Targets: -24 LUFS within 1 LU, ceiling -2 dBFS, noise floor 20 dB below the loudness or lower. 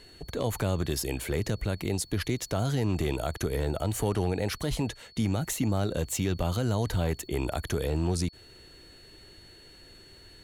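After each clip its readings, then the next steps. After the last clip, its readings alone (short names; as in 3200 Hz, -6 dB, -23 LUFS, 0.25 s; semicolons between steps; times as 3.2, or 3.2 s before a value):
clipped 0.4%; flat tops at -19.0 dBFS; steady tone 4400 Hz; tone level -53 dBFS; loudness -30.0 LUFS; peak -19.0 dBFS; loudness target -24.0 LUFS
-> clip repair -19 dBFS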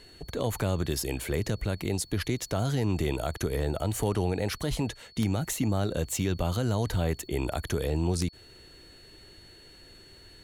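clipped 0.0%; steady tone 4400 Hz; tone level -53 dBFS
-> notch 4400 Hz, Q 30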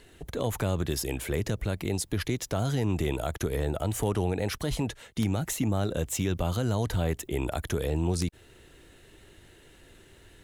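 steady tone none; loudness -30.0 LUFS; peak -10.5 dBFS; loudness target -24.0 LUFS
-> gain +6 dB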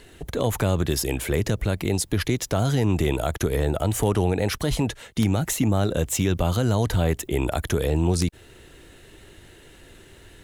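loudness -24.0 LUFS; peak -4.5 dBFS; noise floor -50 dBFS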